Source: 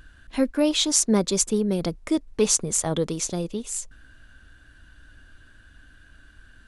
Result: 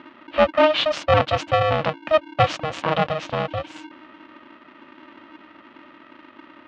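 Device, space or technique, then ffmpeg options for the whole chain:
ring modulator pedal into a guitar cabinet: -af "aeval=exprs='val(0)*sgn(sin(2*PI*310*n/s))':c=same,highpass=110,equalizer=f=400:t=q:w=4:g=-7,equalizer=f=590:t=q:w=4:g=7,equalizer=f=1.2k:t=q:w=4:g=5,equalizer=f=2.8k:t=q:w=4:g=4,lowpass=f=3.4k:w=0.5412,lowpass=f=3.4k:w=1.3066,volume=3dB"

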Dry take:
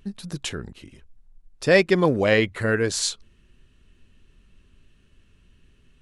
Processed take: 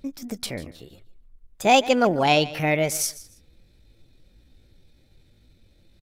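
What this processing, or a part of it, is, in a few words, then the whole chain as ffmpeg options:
chipmunk voice: -filter_complex "[0:a]asettb=1/sr,asplit=3[a][b][c];[a]atrim=end=0.634[d];[b]atrim=start=0.63:end=1.72,asetpts=PTS-STARTPTS,afade=t=in:d=0.004:c=qsin,afade=t=out:st=1.086:d=0.004:c=qsin,equalizer=f=4.1k:w=4.6:g=-5.5[e];[c]atrim=start=1.716[f];[d][e]acrossfade=d=0.004:c1=hsin:c2=qsin[g];[g][f]acrossfade=d=0.004:c1=qsin:c2=hsin,aecho=1:1:146|292:0.126|0.0302,asetrate=60591,aresample=44100,atempo=0.727827"

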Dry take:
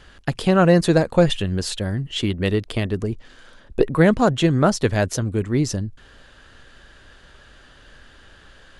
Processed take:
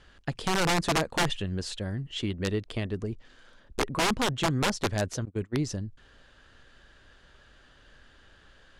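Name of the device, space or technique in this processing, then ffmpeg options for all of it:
overflowing digital effects unit: -filter_complex "[0:a]aeval=exprs='(mod(3.16*val(0)+1,2)-1)/3.16':c=same,lowpass=8.7k,asettb=1/sr,asplit=3[a][b][c];[a]atrim=end=5.254[d];[b]atrim=start=5.25:end=5.67,asetpts=PTS-STARTPTS,afade=t=in:d=0.004:c=qsin,afade=t=out:st=0.416:d=0.004:c=qsin,agate=range=-27dB:threshold=-22dB:ratio=16:detection=peak[e];[c]atrim=start=5.666[f];[d][e]acrossfade=d=0.004:c1=hsin:c2=qsin[g];[g][f]acrossfade=d=0.004:c1=qsin:c2=hsin,volume=-8.5dB"

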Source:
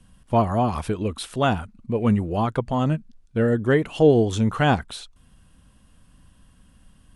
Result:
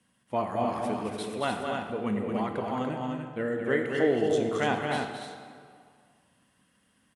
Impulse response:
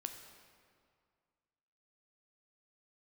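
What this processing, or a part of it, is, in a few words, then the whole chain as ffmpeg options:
stadium PA: -filter_complex "[0:a]highpass=220,equalizer=f=2k:t=o:w=0.32:g=8,aecho=1:1:221.6|291.5:0.501|0.562[a];[1:a]atrim=start_sample=2205[b];[a][b]afir=irnorm=-1:irlink=0,volume=-5.5dB"

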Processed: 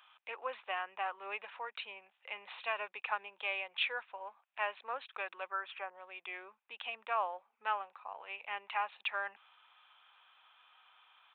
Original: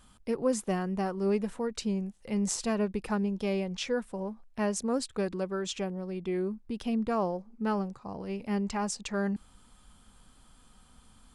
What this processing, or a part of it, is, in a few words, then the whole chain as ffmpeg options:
musical greeting card: -filter_complex "[0:a]aresample=8000,aresample=44100,highpass=f=810:w=0.5412,highpass=f=810:w=1.3066,equalizer=f=2.5k:t=o:w=0.28:g=8,asettb=1/sr,asplit=3[a][b][c];[a]atrim=end=5.494[d];[b]atrim=start=5.49:end=5.93,asetpts=PTS-STARTPTS,afade=t=in:d=0.004:c=qsin,afade=t=out:st=0.436:d=0.004:c=qsin,highshelf=f=2.2k:t=q:w=1.5:g=-11[e];[c]atrim=start=5.926[f];[d][e]acrossfade=d=0.004:c1=hsin:c2=qsin[g];[g][f]acrossfade=d=0.004:c1=qsin:c2=hsin,volume=1.5dB"

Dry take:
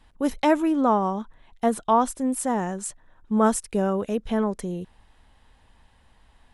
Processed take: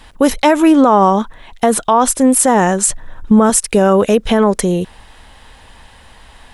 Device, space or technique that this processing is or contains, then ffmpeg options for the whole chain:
mastering chain: -filter_complex "[0:a]asettb=1/sr,asplit=3[a][b][c];[a]atrim=end=2.884[d];[b]atrim=start=2.88:end=3.5,asetpts=PTS-STARTPTS,afade=t=in:d=0.004:c=qsin,afade=t=out:st=0.616:d=0.004:c=qsin,lowshelf=f=190:g=11.5[e];[c]atrim=start=3.496[f];[d][e]acrossfade=d=0.004:c1=hsin:c2=qsin[g];[g][f]acrossfade=d=0.004:c1=qsin:c2=hsin,equalizer=f=500:t=o:w=0.77:g=3,acompressor=threshold=-23dB:ratio=1.5,tiltshelf=f=910:g=-3.5,alimiter=level_in=18.5dB:limit=-1dB:release=50:level=0:latency=1,volume=-1dB"

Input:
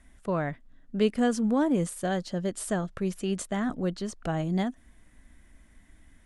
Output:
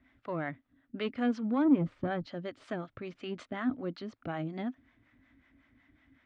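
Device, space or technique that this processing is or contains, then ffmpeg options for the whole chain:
guitar amplifier with harmonic tremolo: -filter_complex "[0:a]asplit=3[a][b][c];[a]afade=t=out:st=1.64:d=0.02[d];[b]aemphasis=mode=reproduction:type=riaa,afade=t=in:st=1.64:d=0.02,afade=t=out:st=2.24:d=0.02[e];[c]afade=t=in:st=2.24:d=0.02[f];[d][e][f]amix=inputs=3:normalize=0,acrossover=split=530[g][h];[g]aeval=exprs='val(0)*(1-0.7/2+0.7/2*cos(2*PI*5.4*n/s))':c=same[i];[h]aeval=exprs='val(0)*(1-0.7/2-0.7/2*cos(2*PI*5.4*n/s))':c=same[j];[i][j]amix=inputs=2:normalize=0,asoftclip=type=tanh:threshold=-18.5dB,highpass=94,equalizer=f=110:t=q:w=4:g=6,equalizer=f=190:t=q:w=4:g=-9,equalizer=f=270:t=q:w=4:g=10,equalizer=f=430:t=q:w=4:g=-3,equalizer=f=1.3k:t=q:w=4:g=5,equalizer=f=2.2k:t=q:w=4:g=5,lowpass=f=4.1k:w=0.5412,lowpass=f=4.1k:w=1.3066,volume=-2.5dB"

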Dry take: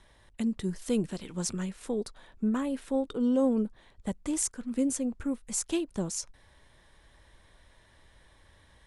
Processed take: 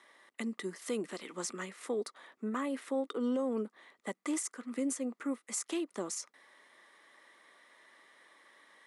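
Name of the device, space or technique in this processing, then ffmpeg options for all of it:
laptop speaker: -af "highpass=f=270:w=0.5412,highpass=f=270:w=1.3066,equalizer=f=1.2k:t=o:w=0.23:g=10.5,equalizer=f=2k:t=o:w=0.26:g=10,alimiter=limit=-24dB:level=0:latency=1:release=88,volume=-1.5dB"

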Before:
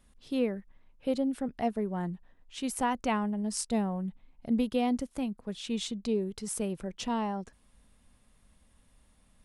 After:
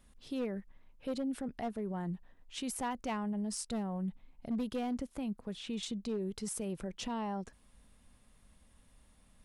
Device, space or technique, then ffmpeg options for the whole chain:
clipper into limiter: -filter_complex "[0:a]asoftclip=type=hard:threshold=-23dB,alimiter=level_in=6dB:limit=-24dB:level=0:latency=1:release=55,volume=-6dB,asettb=1/sr,asplit=3[a][b][c];[a]atrim=end=4.834[d];[b]atrim=start=4.83:end=5.83,asetpts=PTS-STARTPTS,afade=t=in:d=0.004:c=qsin,afade=t=out:st=0.996:d=0.004:c=qsin,acrossover=split=3200[e][f];[f]acompressor=threshold=-51dB:ratio=4:attack=1:release=60[g];[e][g]amix=inputs=2:normalize=0[h];[c]atrim=start=5.826[i];[d][h]acrossfade=d=0.004:c1=hsin:c2=qsin[j];[j][i]acrossfade=d=0.004:c1=qsin:c2=hsin"

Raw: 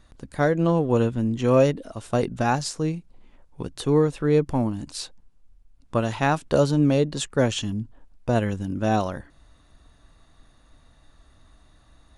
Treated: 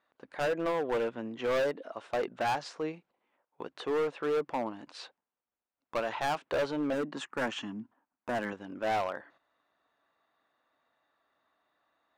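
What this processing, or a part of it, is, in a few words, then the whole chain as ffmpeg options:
walkie-talkie: -filter_complex "[0:a]highpass=540,lowpass=2.4k,asoftclip=type=hard:threshold=-26dB,agate=range=-10dB:threshold=-59dB:ratio=16:detection=peak,asettb=1/sr,asplit=3[a][b][c];[a]atrim=end=6.934[d];[b]atrim=start=6.93:end=8.53,asetpts=PTS-STARTPTS,afade=t=in:d=0.004:c=qsin,afade=t=out:st=1.596:d=0.004:c=qsin,equalizer=f=250:t=o:w=1:g=9,equalizer=f=500:t=o:w=1:g=-8,equalizer=f=1k:t=o:w=1:g=4,equalizer=f=4k:t=o:w=1:g=-6,equalizer=f=8k:t=o:w=1:g=4[e];[c]atrim=start=8.526[f];[d][e]acrossfade=d=0.004:c1=hsin:c2=qsin[g];[g][f]acrossfade=d=0.004:c1=qsin:c2=hsin"

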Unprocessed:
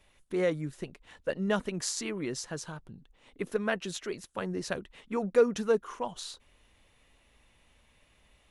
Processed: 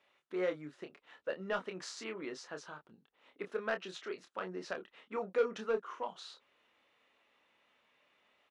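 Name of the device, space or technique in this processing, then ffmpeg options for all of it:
intercom: -filter_complex "[0:a]highpass=340,lowpass=3.9k,equalizer=f=1.3k:t=o:w=0.34:g=5,asoftclip=type=tanh:threshold=-19dB,asplit=2[a][b];[b]adelay=27,volume=-7dB[c];[a][c]amix=inputs=2:normalize=0,volume=-5dB"

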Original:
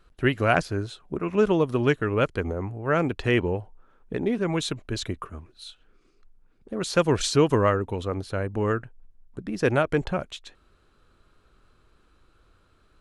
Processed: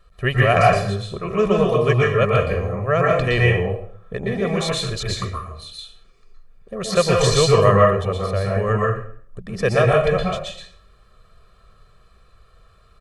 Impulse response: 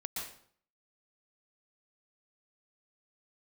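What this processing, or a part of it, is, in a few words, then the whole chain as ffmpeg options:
microphone above a desk: -filter_complex "[0:a]aecho=1:1:1.7:0.88[a];[1:a]atrim=start_sample=2205[b];[a][b]afir=irnorm=-1:irlink=0,volume=4dB"

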